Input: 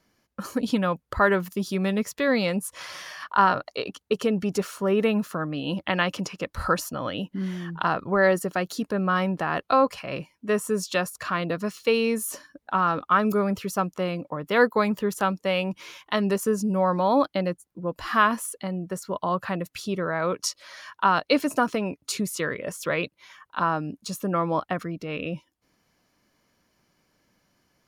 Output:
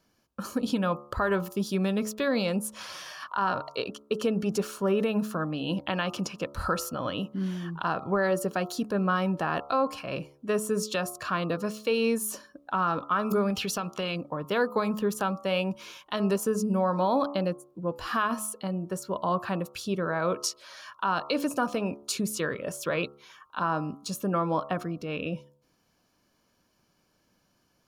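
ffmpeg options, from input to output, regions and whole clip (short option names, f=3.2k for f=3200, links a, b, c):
-filter_complex "[0:a]asettb=1/sr,asplit=3[a][b][c];[a]atrim=end=13.504[d];[b]atrim=start=13.5:end=14.16,asetpts=PTS-STARTPTS,afade=t=in:d=0.004:c=qsin,afade=t=out:st=0.656:d=0.004:c=qsin,equalizer=f=3.2k:w=0.69:g=12.5,acompressor=threshold=-24dB:ratio=10:attack=3.2:release=140:knee=1:detection=peak[e];[c]atrim=start=14.156[f];[d][e]acrossfade=d=0.004:c1=hsin:c2=qsin[g];[g][f]acrossfade=d=0.004:c1=qsin:c2=hsin,equalizer=f=2k:w=7.1:g=-11.5,bandreject=f=71.46:t=h:w=4,bandreject=f=142.92:t=h:w=4,bandreject=f=214.38:t=h:w=4,bandreject=f=285.84:t=h:w=4,bandreject=f=357.3:t=h:w=4,bandreject=f=428.76:t=h:w=4,bandreject=f=500.22:t=h:w=4,bandreject=f=571.68:t=h:w=4,bandreject=f=643.14:t=h:w=4,bandreject=f=714.6:t=h:w=4,bandreject=f=786.06:t=h:w=4,bandreject=f=857.52:t=h:w=4,bandreject=f=928.98:t=h:w=4,bandreject=f=1.00044k:t=h:w=4,bandreject=f=1.0719k:t=h:w=4,bandreject=f=1.14336k:t=h:w=4,bandreject=f=1.21482k:t=h:w=4,bandreject=f=1.28628k:t=h:w=4,bandreject=f=1.35774k:t=h:w=4,alimiter=limit=-15.5dB:level=0:latency=1:release=121,volume=-1dB"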